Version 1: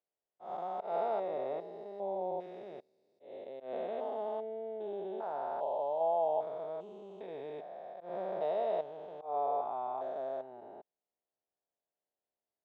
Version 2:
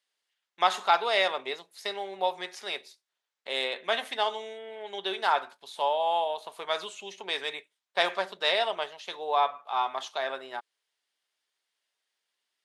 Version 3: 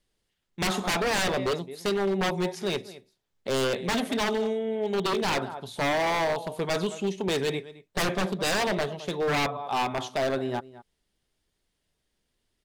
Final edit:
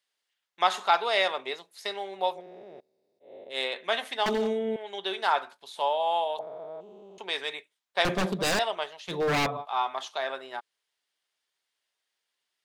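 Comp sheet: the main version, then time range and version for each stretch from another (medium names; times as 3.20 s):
2
2.37–3.54 s: from 1, crossfade 0.10 s
4.26–4.76 s: from 3
6.39–7.18 s: from 1
8.05–8.59 s: from 3
9.10–9.63 s: from 3, crossfade 0.06 s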